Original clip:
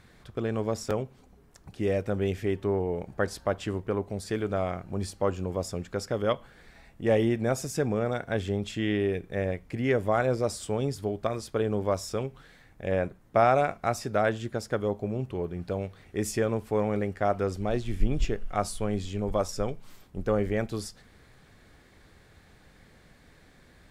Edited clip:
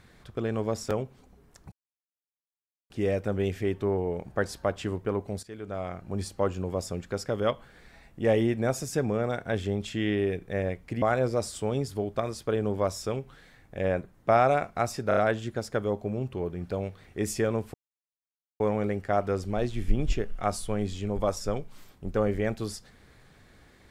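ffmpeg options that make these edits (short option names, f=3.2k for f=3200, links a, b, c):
-filter_complex "[0:a]asplit=8[a][b][c][d][e][f][g][h];[a]atrim=end=1.72,asetpts=PTS-STARTPTS,afade=t=out:st=1.716:d=0.004:c=hsin,apad=pad_dur=1.18[i];[b]atrim=start=1.72:end=4.25,asetpts=PTS-STARTPTS,afade=t=in:d=0.004:c=hsin,afade=t=out:st=2.526:d=0.004:c=hsin:silence=0.141254[j];[c]atrim=start=4.25:end=9.842,asetpts=PTS-STARTPTS,afade=t=in:d=0.77:silence=0.141254[k];[d]atrim=start=10.088:end=14.182[l];[e]atrim=start=14.148:end=14.182[m];[f]atrim=start=14.148:end=14.182[n];[g]atrim=start=14.148:end=16.72,asetpts=PTS-STARTPTS,afade=t=out:st=2.568:d=0.004:c=hsin,apad=pad_dur=0.86[o];[h]atrim=start=16.72,asetpts=PTS-STARTPTS,afade=t=in:d=0.004:c=hsin[p];[i][j][k]concat=n=3:v=0:a=1[q];[q][l]acrossfade=d=0.004:c1=hsin:c2=hsin[r];[r][m]acrossfade=d=0.004:c1=hsin:c2=hsin[s];[s][n]acrossfade=d=0.004:c1=hsin:c2=hsin[t];[o][p]concat=n=2:v=0:a=1[u];[t][u]acrossfade=d=0.004:c1=hsin:c2=hsin"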